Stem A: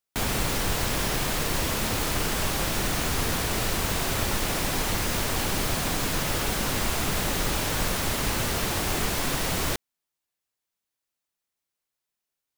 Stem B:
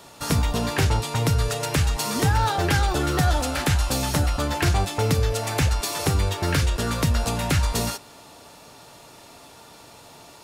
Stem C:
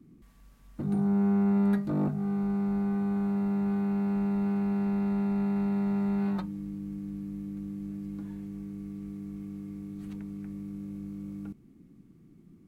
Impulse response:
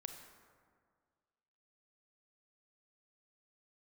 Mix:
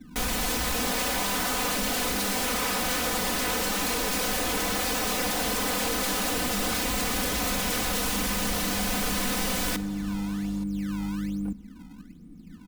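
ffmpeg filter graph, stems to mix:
-filter_complex "[0:a]volume=-4dB,asplit=2[link_01][link_02];[link_02]volume=-3.5dB[link_03];[1:a]adelay=200,volume=-5dB[link_04];[2:a]acrusher=samples=22:mix=1:aa=0.000001:lfo=1:lforange=35.2:lforate=1.2,lowshelf=frequency=190:gain=10.5,volume=0dB,asplit=2[link_05][link_06];[link_06]volume=-11dB[link_07];[3:a]atrim=start_sample=2205[link_08];[link_03][link_07]amix=inputs=2:normalize=0[link_09];[link_09][link_08]afir=irnorm=-1:irlink=0[link_10];[link_01][link_04][link_05][link_10]amix=inputs=4:normalize=0,aeval=exprs='0.0531*(abs(mod(val(0)/0.0531+3,4)-2)-1)':channel_layout=same,aecho=1:1:4:0.98"

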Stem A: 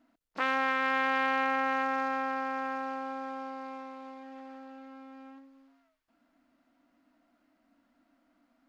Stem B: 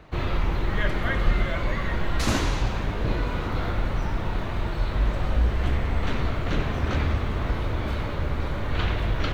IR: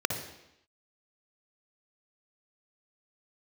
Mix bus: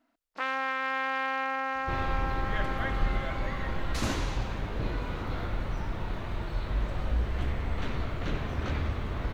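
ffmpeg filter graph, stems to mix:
-filter_complex "[0:a]equalizer=frequency=170:width=0.66:gain=-7,volume=-1.5dB[link_01];[1:a]adelay=1750,volume=-6.5dB[link_02];[link_01][link_02]amix=inputs=2:normalize=0"

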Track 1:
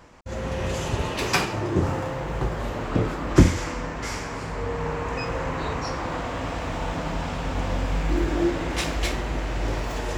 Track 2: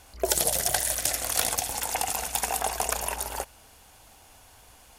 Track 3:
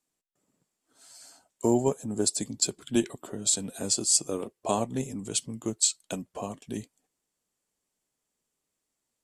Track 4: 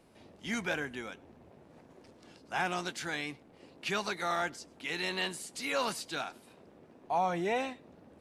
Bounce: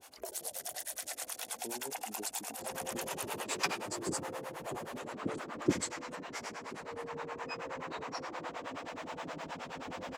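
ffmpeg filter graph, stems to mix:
ffmpeg -i stem1.wav -i stem2.wav -i stem3.wav -i stem4.wav -filter_complex "[0:a]adelay=2300,volume=-6.5dB[link_01];[1:a]alimiter=limit=-19.5dB:level=0:latency=1:release=42,acompressor=threshold=-37dB:ratio=4,volume=2.5dB[link_02];[2:a]acompressor=threshold=-29dB:ratio=2,volume=-9dB[link_03];[3:a]adelay=1050,volume=-20dB[link_04];[link_01][link_02][link_03][link_04]amix=inputs=4:normalize=0,highpass=260,acrossover=split=460[link_05][link_06];[link_05]aeval=exprs='val(0)*(1-1/2+1/2*cos(2*PI*9.5*n/s))':channel_layout=same[link_07];[link_06]aeval=exprs='val(0)*(1-1/2-1/2*cos(2*PI*9.5*n/s))':channel_layout=same[link_08];[link_07][link_08]amix=inputs=2:normalize=0" out.wav

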